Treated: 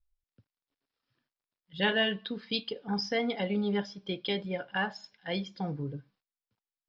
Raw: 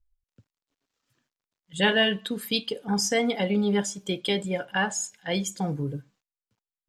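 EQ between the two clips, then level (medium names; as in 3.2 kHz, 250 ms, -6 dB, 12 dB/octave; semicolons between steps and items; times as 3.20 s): Chebyshev low-pass 5.3 kHz, order 6; -5.0 dB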